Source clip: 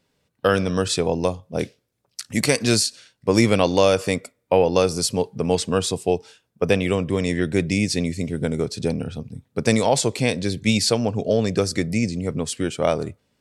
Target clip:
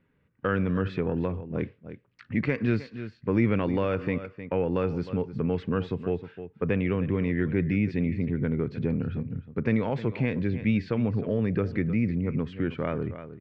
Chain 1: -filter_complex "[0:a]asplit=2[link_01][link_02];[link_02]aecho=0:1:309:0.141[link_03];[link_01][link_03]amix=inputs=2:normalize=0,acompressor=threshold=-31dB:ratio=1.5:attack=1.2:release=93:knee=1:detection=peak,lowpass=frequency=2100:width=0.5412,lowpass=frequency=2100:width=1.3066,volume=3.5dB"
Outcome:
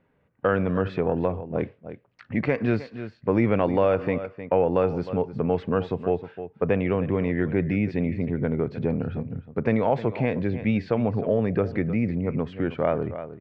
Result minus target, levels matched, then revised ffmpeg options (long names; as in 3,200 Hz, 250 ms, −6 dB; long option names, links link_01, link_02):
500 Hz band +3.0 dB
-filter_complex "[0:a]asplit=2[link_01][link_02];[link_02]aecho=0:1:309:0.141[link_03];[link_01][link_03]amix=inputs=2:normalize=0,acompressor=threshold=-31dB:ratio=1.5:attack=1.2:release=93:knee=1:detection=peak,lowpass=frequency=2100:width=0.5412,lowpass=frequency=2100:width=1.3066,equalizer=frequency=700:width=1.3:gain=-12,volume=3.5dB"